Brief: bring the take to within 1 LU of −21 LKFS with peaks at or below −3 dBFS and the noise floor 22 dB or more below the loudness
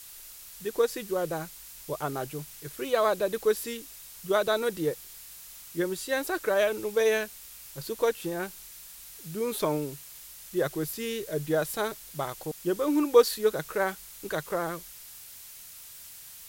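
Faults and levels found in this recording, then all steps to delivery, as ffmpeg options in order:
background noise floor −47 dBFS; target noise floor −51 dBFS; integrated loudness −29.0 LKFS; sample peak −8.0 dBFS; target loudness −21.0 LKFS
→ -af "afftdn=noise_reduction=6:noise_floor=-47"
-af "volume=8dB,alimiter=limit=-3dB:level=0:latency=1"

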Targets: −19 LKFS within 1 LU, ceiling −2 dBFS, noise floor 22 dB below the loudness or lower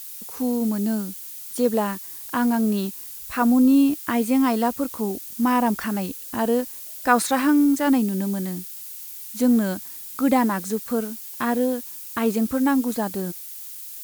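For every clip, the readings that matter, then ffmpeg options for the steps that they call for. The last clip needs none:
background noise floor −37 dBFS; target noise floor −45 dBFS; integrated loudness −22.5 LKFS; sample peak −4.0 dBFS; target loudness −19.0 LKFS
→ -af "afftdn=noise_reduction=8:noise_floor=-37"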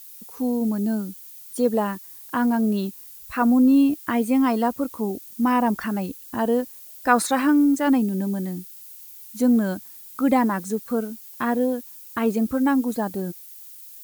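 background noise floor −43 dBFS; target noise floor −45 dBFS
→ -af "afftdn=noise_reduction=6:noise_floor=-43"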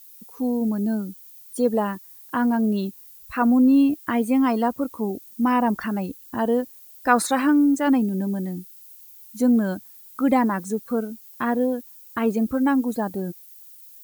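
background noise floor −47 dBFS; integrated loudness −22.5 LKFS; sample peak −4.5 dBFS; target loudness −19.0 LKFS
→ -af "volume=3.5dB,alimiter=limit=-2dB:level=0:latency=1"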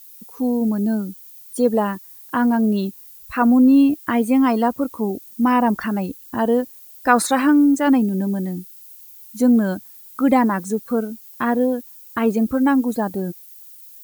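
integrated loudness −19.0 LKFS; sample peak −2.0 dBFS; background noise floor −43 dBFS

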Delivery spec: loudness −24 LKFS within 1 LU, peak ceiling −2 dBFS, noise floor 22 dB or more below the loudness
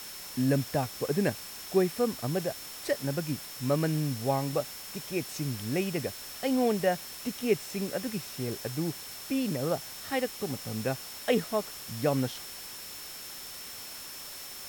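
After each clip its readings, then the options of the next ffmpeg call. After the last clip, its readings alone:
interfering tone 5,400 Hz; level of the tone −47 dBFS; background noise floor −43 dBFS; target noise floor −54 dBFS; integrated loudness −31.5 LKFS; sample peak −13.0 dBFS; target loudness −24.0 LKFS
→ -af "bandreject=frequency=5400:width=30"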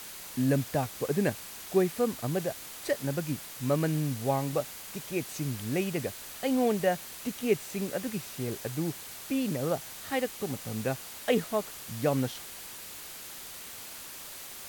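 interfering tone none found; background noise floor −44 dBFS; target noise floor −54 dBFS
→ -af "afftdn=noise_reduction=10:noise_floor=-44"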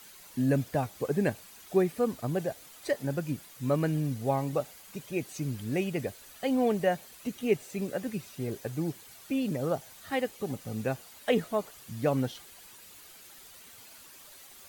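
background noise floor −52 dBFS; target noise floor −54 dBFS
→ -af "afftdn=noise_reduction=6:noise_floor=-52"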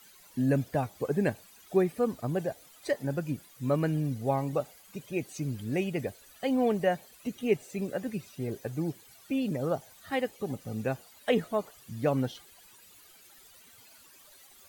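background noise floor −56 dBFS; integrated loudness −31.5 LKFS; sample peak −13.5 dBFS; target loudness −24.0 LKFS
→ -af "volume=7.5dB"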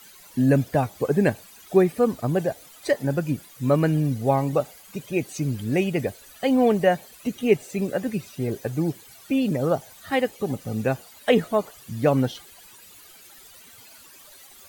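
integrated loudness −24.0 LKFS; sample peak −6.0 dBFS; background noise floor −49 dBFS

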